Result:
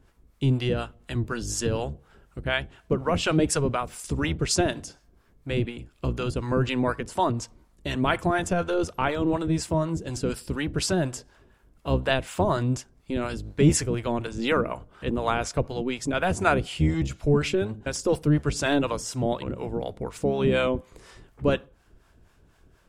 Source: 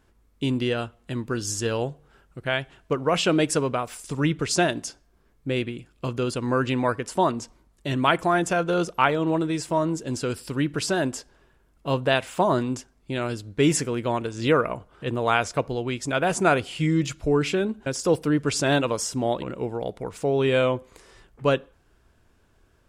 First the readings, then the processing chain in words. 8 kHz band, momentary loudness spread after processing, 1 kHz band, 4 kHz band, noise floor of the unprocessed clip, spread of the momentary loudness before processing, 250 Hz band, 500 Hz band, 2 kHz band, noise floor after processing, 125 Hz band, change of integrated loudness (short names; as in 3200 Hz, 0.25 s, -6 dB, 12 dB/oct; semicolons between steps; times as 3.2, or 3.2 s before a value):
-1.0 dB, 9 LU, -3.5 dB, -2.0 dB, -62 dBFS, 10 LU, -1.0 dB, -2.5 dB, -2.5 dB, -61 dBFS, +2.0 dB, -1.5 dB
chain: octaver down 1 oct, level -1 dB; in parallel at -2.5 dB: compressor, threshold -35 dBFS, peak gain reduction 20.5 dB; on the sum: harmonic tremolo 4.1 Hz, depth 70%, crossover 610 Hz